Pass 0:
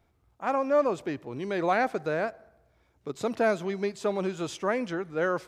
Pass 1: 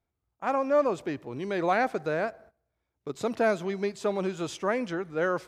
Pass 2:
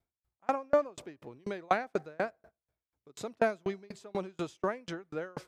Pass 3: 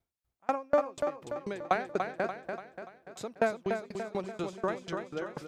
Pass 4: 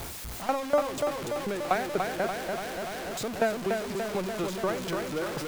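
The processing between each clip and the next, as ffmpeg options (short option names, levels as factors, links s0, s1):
-af "agate=range=0.178:threshold=0.00251:ratio=16:detection=peak"
-af "aeval=exprs='val(0)*pow(10,-35*if(lt(mod(4.1*n/s,1),2*abs(4.1)/1000),1-mod(4.1*n/s,1)/(2*abs(4.1)/1000),(mod(4.1*n/s,1)-2*abs(4.1)/1000)/(1-2*abs(4.1)/1000))/20)':c=same,volume=1.26"
-af "aecho=1:1:290|580|870|1160|1450|1740:0.501|0.251|0.125|0.0626|0.0313|0.0157"
-af "aeval=exprs='val(0)+0.5*0.0299*sgn(val(0))':c=same"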